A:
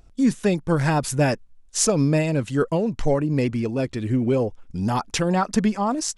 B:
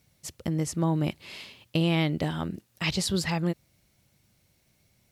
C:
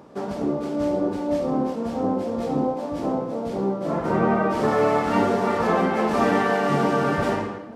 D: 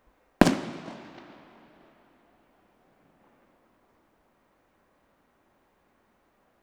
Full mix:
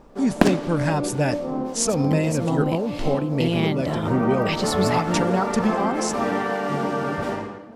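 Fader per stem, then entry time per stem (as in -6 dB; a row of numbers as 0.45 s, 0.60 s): -2.5 dB, +1.0 dB, -3.5 dB, +0.5 dB; 0.00 s, 1.65 s, 0.00 s, 0.00 s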